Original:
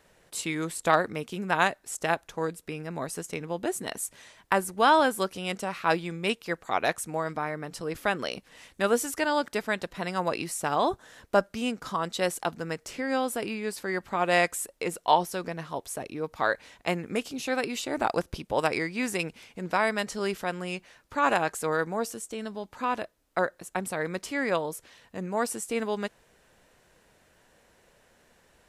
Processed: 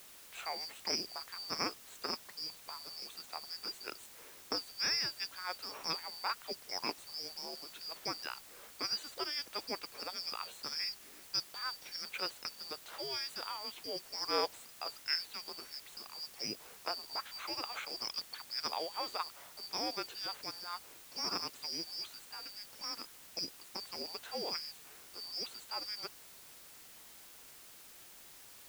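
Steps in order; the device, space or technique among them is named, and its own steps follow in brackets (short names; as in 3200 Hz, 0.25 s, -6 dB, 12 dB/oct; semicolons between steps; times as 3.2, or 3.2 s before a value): 12.93–13.57 high shelf 4000 Hz +7.5 dB; split-band scrambled radio (four-band scrambler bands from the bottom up 2341; BPF 370–3200 Hz; white noise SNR 13 dB); gain -5 dB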